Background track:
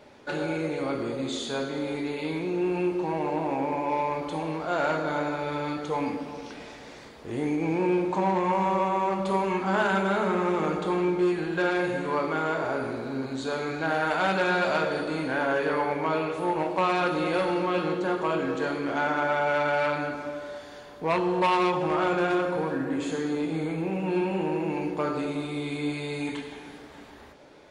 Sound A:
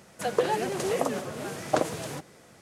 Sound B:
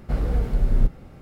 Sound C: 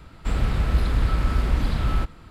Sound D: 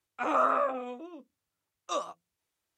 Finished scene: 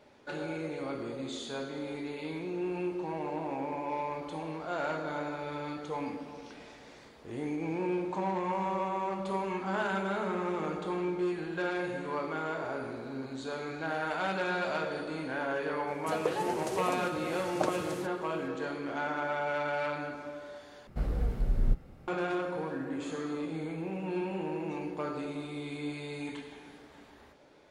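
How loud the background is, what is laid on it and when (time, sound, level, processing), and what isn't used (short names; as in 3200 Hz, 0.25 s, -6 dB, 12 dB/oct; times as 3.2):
background track -7.5 dB
15.87 add A -7 dB
20.87 replace with B -8 dB
22.8 add D -17 dB + resonator 78 Hz, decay 0.17 s, harmonics odd, mix 80%
not used: C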